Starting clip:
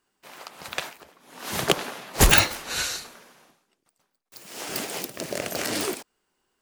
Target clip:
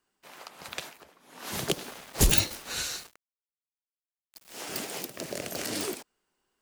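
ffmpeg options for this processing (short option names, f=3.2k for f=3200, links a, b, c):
-filter_complex "[0:a]acrossover=split=500|3000[a][b][c];[b]acompressor=threshold=-34dB:ratio=6[d];[a][d][c]amix=inputs=3:normalize=0,asettb=1/sr,asplit=3[e][f][g];[e]atrim=end=1.584[h];[f]atrim=start=1.58:end=4.54,asetpts=PTS-STARTPTS,afade=t=in:d=0.004:c=qsin,afade=t=out:st=2.956:d=0.004:c=qsin,aeval=exprs='val(0)*gte(abs(val(0)),0.0112)':c=same[i];[g]atrim=start=4.536[j];[h][i]acrossfade=d=0.004:c1=hsin:c2=qsin[k];[k][j]acrossfade=d=0.004:c1=qsin:c2=hsin,volume=-4dB"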